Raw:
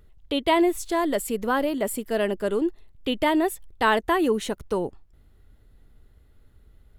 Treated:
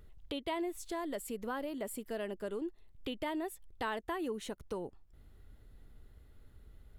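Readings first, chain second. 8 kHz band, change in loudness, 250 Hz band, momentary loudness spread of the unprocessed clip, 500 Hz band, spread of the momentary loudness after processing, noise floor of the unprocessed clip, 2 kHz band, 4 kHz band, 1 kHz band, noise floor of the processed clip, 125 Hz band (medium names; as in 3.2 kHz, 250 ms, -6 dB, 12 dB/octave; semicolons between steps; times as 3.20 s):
-13.0 dB, -15.0 dB, -15.0 dB, 8 LU, -15.0 dB, 6 LU, -56 dBFS, -16.0 dB, -14.5 dB, -16.0 dB, -60 dBFS, -12.5 dB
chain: compression 2:1, threshold -44 dBFS, peak gain reduction 15 dB; trim -2 dB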